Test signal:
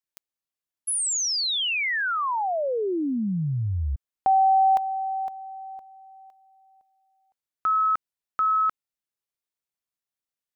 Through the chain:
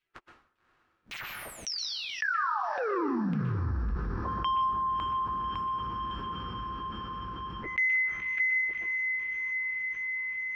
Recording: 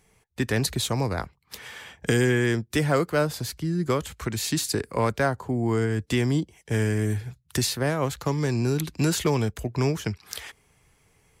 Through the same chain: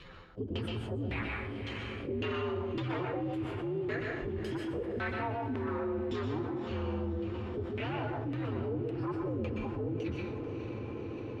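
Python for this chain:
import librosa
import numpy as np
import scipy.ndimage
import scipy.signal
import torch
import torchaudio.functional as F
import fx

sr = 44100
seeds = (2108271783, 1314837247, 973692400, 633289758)

y = fx.partial_stretch(x, sr, pct=128)
y = fx.peak_eq(y, sr, hz=360.0, db=13.0, octaves=0.81)
y = fx.leveller(y, sr, passes=2)
y = fx.tone_stack(y, sr, knobs='5-5-5')
y = fx.filter_lfo_lowpass(y, sr, shape='saw_down', hz=1.8, low_hz=240.0, high_hz=2700.0, q=2.3)
y = fx.echo_diffused(y, sr, ms=574, feedback_pct=62, wet_db=-15)
y = fx.rev_plate(y, sr, seeds[0], rt60_s=0.51, hf_ratio=0.95, predelay_ms=110, drr_db=3.5)
y = fx.env_flatten(y, sr, amount_pct=70)
y = F.gain(torch.from_numpy(y), -7.5).numpy()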